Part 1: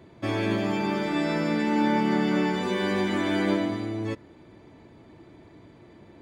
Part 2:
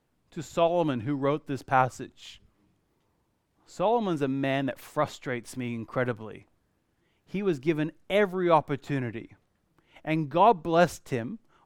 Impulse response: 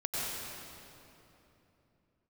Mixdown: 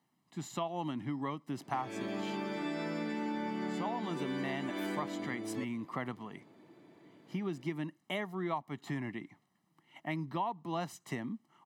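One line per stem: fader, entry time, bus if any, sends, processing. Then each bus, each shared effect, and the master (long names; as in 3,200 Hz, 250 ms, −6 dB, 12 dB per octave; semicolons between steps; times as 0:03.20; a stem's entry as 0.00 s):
−8.0 dB, 1.50 s, no send, no processing
−4.0 dB, 0.00 s, no send, comb filter 1 ms, depth 72%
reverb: not used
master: high-pass filter 150 Hz 24 dB per octave; downward compressor 6 to 1, threshold −33 dBFS, peak gain reduction 15.5 dB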